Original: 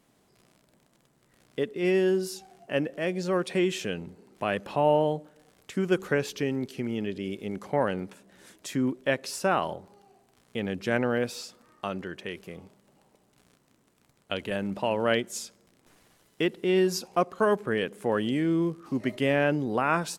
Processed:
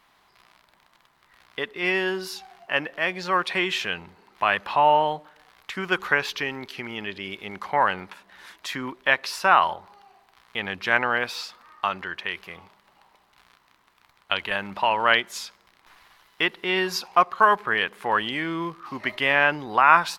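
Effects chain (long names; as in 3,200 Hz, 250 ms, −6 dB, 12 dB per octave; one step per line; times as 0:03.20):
octave-band graphic EQ 125/250/500/1,000/2,000/4,000/8,000 Hz −10/−9/−8/+10/+5/+6/−9 dB
level +4 dB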